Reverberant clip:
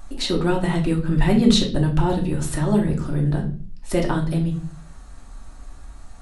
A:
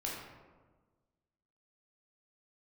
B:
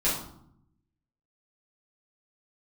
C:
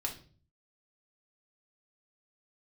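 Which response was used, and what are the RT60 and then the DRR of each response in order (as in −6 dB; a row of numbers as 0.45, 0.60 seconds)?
C; 1.4, 0.70, 0.40 seconds; −4.5, −9.5, 0.0 decibels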